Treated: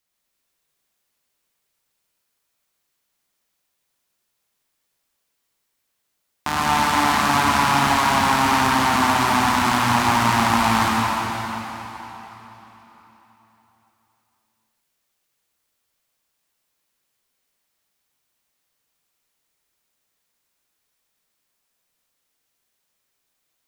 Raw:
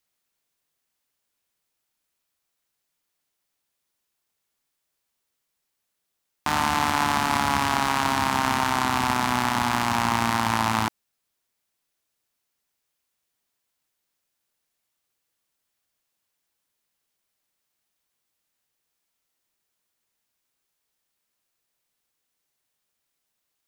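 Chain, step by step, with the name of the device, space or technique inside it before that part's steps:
cathedral (convolution reverb RT60 3.9 s, pre-delay 74 ms, DRR −4 dB)

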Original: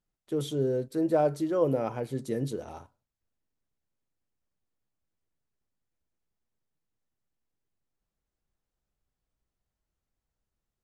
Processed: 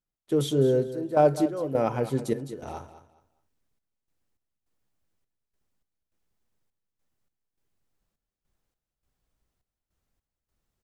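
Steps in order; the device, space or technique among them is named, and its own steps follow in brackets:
trance gate with a delay (gate pattern "..xxxx..xx" 103 BPM −12 dB; repeating echo 207 ms, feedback 24%, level −13.5 dB)
level +6 dB

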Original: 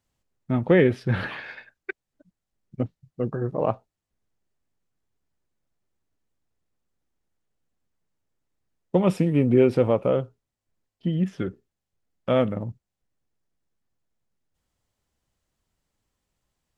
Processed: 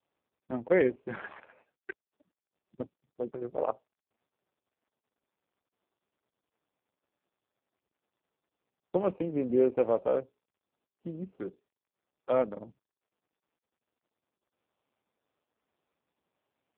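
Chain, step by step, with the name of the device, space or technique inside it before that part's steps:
adaptive Wiener filter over 25 samples
telephone (band-pass filter 340–3,000 Hz; level −3.5 dB; AMR narrowband 4.75 kbit/s 8,000 Hz)

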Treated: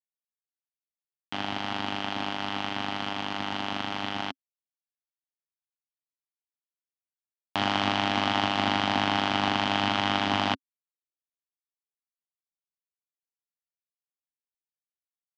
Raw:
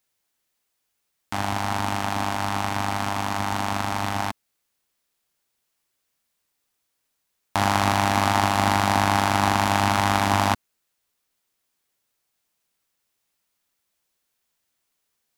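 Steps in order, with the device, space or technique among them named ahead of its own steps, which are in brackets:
blown loudspeaker (dead-zone distortion −34 dBFS; loudspeaker in its box 120–5,100 Hz, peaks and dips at 270 Hz +6 dB, 1,000 Hz −3 dB, 3,100 Hz +10 dB)
level −4.5 dB

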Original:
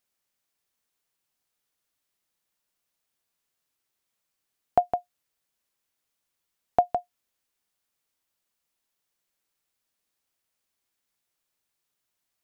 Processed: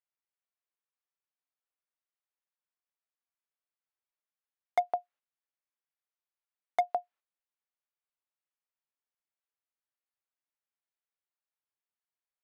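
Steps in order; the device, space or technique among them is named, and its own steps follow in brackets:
walkie-talkie (band-pass filter 560–2,300 Hz; hard clipping −17.5 dBFS, distortion −11 dB; noise gate −57 dBFS, range −10 dB)
level −2 dB

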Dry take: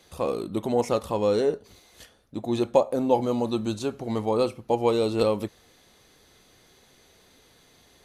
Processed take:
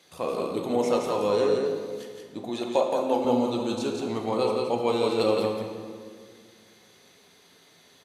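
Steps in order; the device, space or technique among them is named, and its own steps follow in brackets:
PA in a hall (high-pass filter 140 Hz 12 dB per octave; parametric band 3,000 Hz +3.5 dB 2.7 octaves; single-tap delay 172 ms −4 dB; convolution reverb RT60 2.0 s, pre-delay 3 ms, DRR 2.5 dB)
0:02.49–0:03.25: high-pass filter 340 Hz 6 dB per octave
level −4 dB

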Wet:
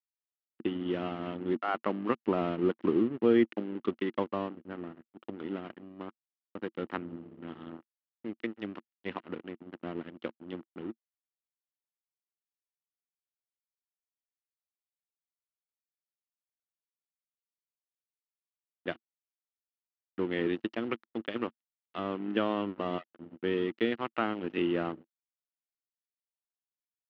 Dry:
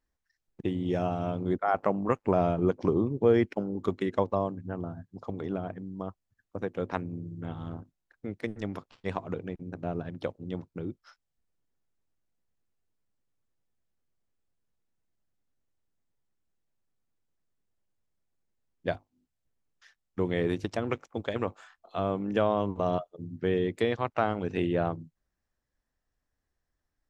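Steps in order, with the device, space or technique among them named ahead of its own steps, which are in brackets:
0:06.66–0:07.16: low-shelf EQ 100 Hz +6 dB
blown loudspeaker (dead-zone distortion −41 dBFS; loudspeaker in its box 170–4,200 Hz, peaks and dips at 230 Hz +8 dB, 330 Hz +9 dB, 670 Hz −3 dB, 1,300 Hz +5 dB, 1,900 Hz +5 dB, 2,900 Hz +10 dB)
level −5 dB

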